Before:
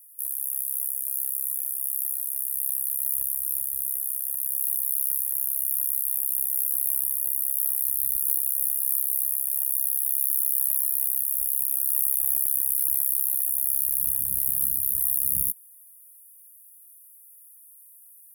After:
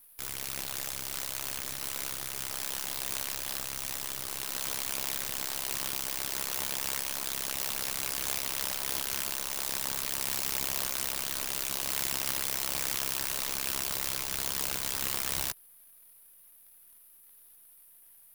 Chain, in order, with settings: tracing distortion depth 0.35 ms; gain -5 dB

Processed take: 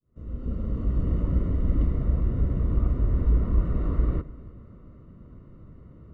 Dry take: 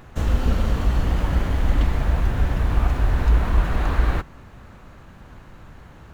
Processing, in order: opening faded in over 1.11 s; running mean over 54 samples; low shelf 74 Hz -7.5 dB; on a send: multi-head echo 0.101 s, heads first and third, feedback 41%, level -20.5 dB; on the sum: gain +1 dB

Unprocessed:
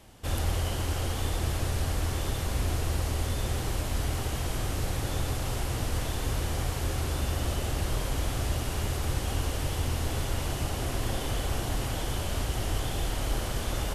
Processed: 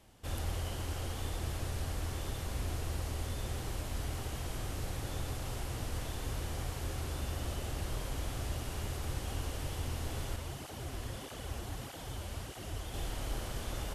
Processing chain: 10.36–12.94 tape flanging out of phase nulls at 1.6 Hz, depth 7.8 ms; gain -8 dB

